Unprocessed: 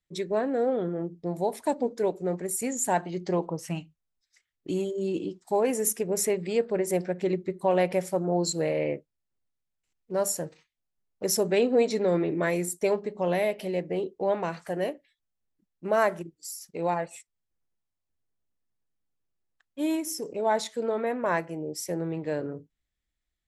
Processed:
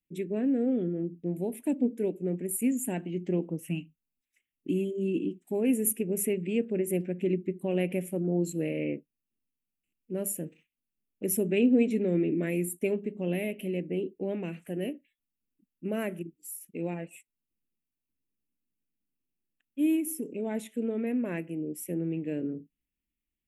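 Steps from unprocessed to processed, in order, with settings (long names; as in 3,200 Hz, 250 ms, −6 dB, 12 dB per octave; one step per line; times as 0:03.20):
drawn EQ curve 120 Hz 0 dB, 250 Hz +13 dB, 1,000 Hz −16 dB, 1,900 Hz −3 dB, 2,700 Hz +8 dB, 4,600 Hz −20 dB, 11,000 Hz +8 dB
level −6 dB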